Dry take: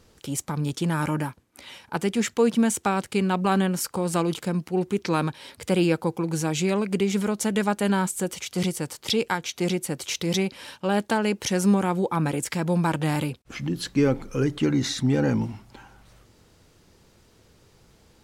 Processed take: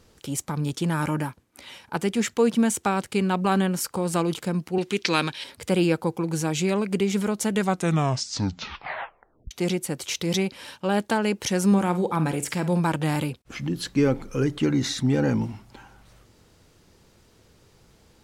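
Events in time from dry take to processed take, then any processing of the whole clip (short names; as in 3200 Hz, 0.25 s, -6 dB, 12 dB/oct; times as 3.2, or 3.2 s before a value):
4.78–5.44 weighting filter D
7.55 tape stop 1.96 s
11.67–12.8 flutter echo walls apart 8.6 m, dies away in 0.24 s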